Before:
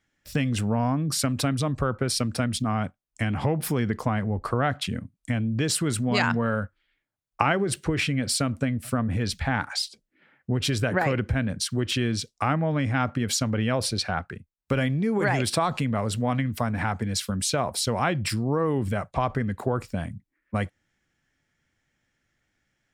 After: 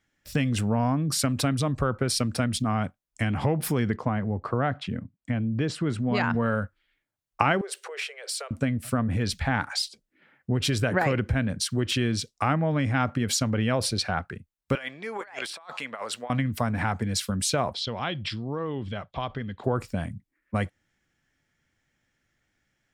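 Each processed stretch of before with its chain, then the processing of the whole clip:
3.96–6.35 s: high-pass 87 Hz + tape spacing loss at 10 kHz 21 dB
7.61–8.51 s: compression 2.5:1, threshold -30 dBFS + steep high-pass 400 Hz 96 dB/octave
14.75–16.30 s: high-pass 800 Hz + treble shelf 7.1 kHz -9 dB + compressor with a negative ratio -35 dBFS, ratio -0.5
17.73–19.64 s: four-pole ladder low-pass 5.5 kHz, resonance 30% + peaking EQ 3.3 kHz +11.5 dB 0.33 oct
whole clip: none

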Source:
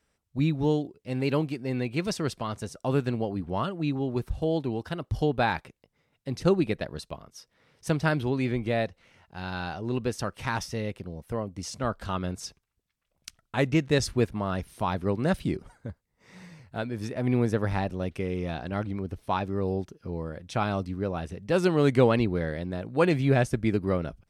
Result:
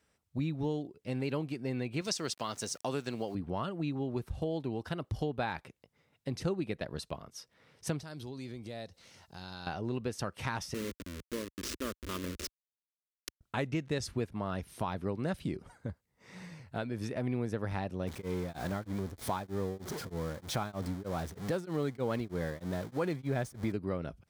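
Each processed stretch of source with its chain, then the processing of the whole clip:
2.01–3.35 s: peaking EQ 6 kHz +11 dB 1.6 oct + small samples zeroed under -48.5 dBFS + high-pass 260 Hz 6 dB/octave
8.01–9.67 s: resonant high shelf 3.4 kHz +9 dB, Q 1.5 + compression 3:1, threshold -45 dBFS
10.74–13.41 s: send-on-delta sampling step -29.5 dBFS + static phaser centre 320 Hz, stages 4
18.07–23.72 s: jump at every zero crossing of -33 dBFS + peaking EQ 2.7 kHz -9 dB 0.21 oct + tremolo of two beating tones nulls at 3.2 Hz
whole clip: high-pass 58 Hz; compression 3:1, threshold -33 dBFS

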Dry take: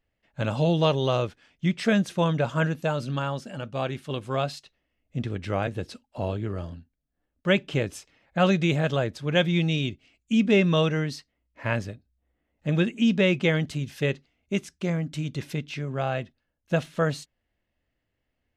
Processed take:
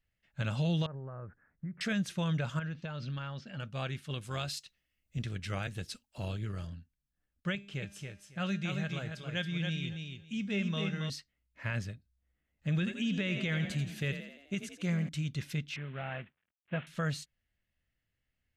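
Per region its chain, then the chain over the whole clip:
0.86–1.81 s: compression 5:1, threshold -32 dBFS + steep low-pass 1.7 kHz 48 dB/octave
2.59–3.60 s: low-pass 5 kHz 24 dB/octave + compression 10:1, threshold -28 dBFS
4.21–6.67 s: treble shelf 4.2 kHz +11 dB + AM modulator 220 Hz, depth 25%
7.55–11.10 s: feedback comb 200 Hz, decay 0.59 s + feedback delay 276 ms, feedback 17%, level -5 dB
12.73–15.09 s: band-stop 5.3 kHz, Q 11 + frequency-shifting echo 85 ms, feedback 56%, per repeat +34 Hz, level -11.5 dB
15.76–16.87 s: CVSD coder 16 kbps + high-pass 220 Hz 6 dB/octave
whole clip: high-order bell 510 Hz -8.5 dB 2.4 oct; peak limiter -20.5 dBFS; trim -3.5 dB

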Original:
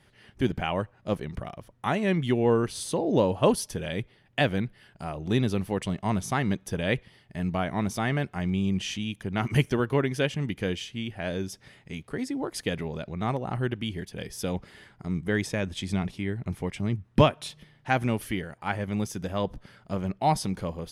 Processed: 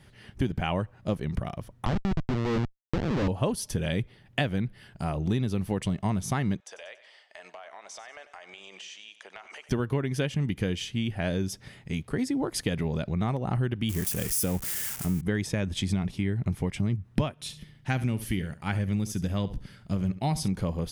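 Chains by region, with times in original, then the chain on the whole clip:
1.85–3.28 s: Schmitt trigger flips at -23 dBFS + distance through air 170 m
6.60–9.69 s: elliptic band-pass 590–7700 Hz, stop band 60 dB + compression 8:1, threshold -44 dBFS + feedback delay 94 ms, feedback 48%, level -14.5 dB
13.89–15.21 s: zero-crossing glitches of -24.5 dBFS + peaking EQ 4 kHz -8.5 dB 0.83 oct
17.32–20.48 s: peaking EQ 790 Hz -7.5 dB 2.1 oct + flutter echo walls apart 12 m, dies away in 0.27 s
whole clip: tone controls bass +6 dB, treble +2 dB; compression, threshold -26 dBFS; trim +2.5 dB

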